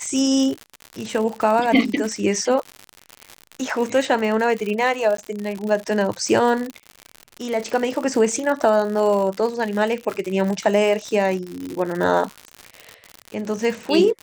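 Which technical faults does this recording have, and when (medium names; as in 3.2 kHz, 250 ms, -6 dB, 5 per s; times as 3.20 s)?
crackle 100 per s -25 dBFS
5.17–5.18 s: dropout 13 ms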